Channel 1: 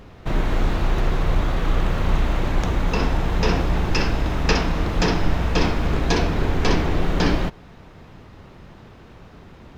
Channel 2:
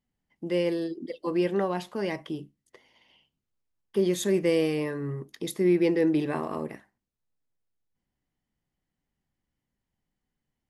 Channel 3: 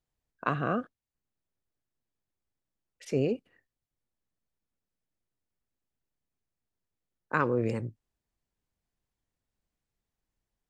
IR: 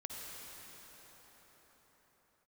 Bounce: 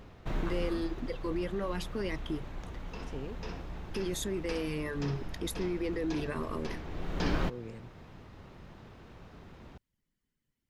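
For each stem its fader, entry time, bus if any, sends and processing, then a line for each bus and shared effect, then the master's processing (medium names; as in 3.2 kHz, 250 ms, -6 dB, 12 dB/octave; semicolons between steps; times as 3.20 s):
-7.0 dB, 0.00 s, no bus, no send, auto duck -14 dB, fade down 1.00 s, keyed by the second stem
+1.0 dB, 0.00 s, bus A, no send, reverb removal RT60 0.65 s
-13.5 dB, 0.00 s, bus A, no send, none
bus A: 0.0 dB, peaking EQ 760 Hz -12.5 dB 0.51 oct; peak limiter -27 dBFS, peak gain reduction 13.5 dB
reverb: none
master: none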